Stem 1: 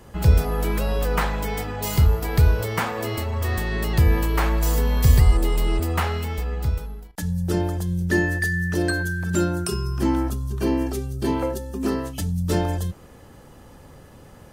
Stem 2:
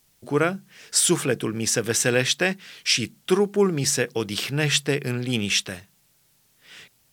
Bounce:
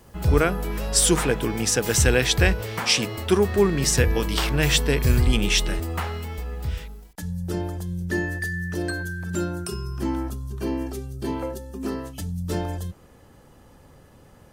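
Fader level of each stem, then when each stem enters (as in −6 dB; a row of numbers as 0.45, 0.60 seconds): −5.0, +0.5 decibels; 0.00, 0.00 seconds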